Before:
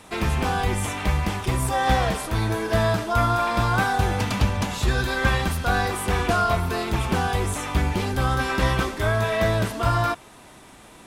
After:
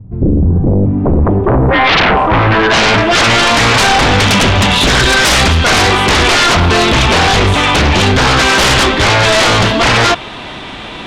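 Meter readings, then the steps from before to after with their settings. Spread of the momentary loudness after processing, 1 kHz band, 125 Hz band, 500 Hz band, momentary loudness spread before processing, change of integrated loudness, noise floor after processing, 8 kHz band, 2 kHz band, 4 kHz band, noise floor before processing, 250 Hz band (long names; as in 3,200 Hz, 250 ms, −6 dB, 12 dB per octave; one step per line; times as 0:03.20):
4 LU, +12.5 dB, +11.0 dB, +12.5 dB, 4 LU, +14.5 dB, −26 dBFS, +16.5 dB, +16.5 dB, +21.5 dB, −47 dBFS, +14.0 dB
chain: low-pass filter sweep 120 Hz → 3,400 Hz, 0:00.38–0:03.32
sine wavefolder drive 16 dB, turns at −6 dBFS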